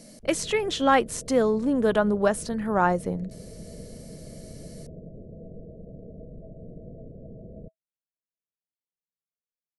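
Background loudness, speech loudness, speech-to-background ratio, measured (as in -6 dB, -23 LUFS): -44.0 LUFS, -24.5 LUFS, 19.5 dB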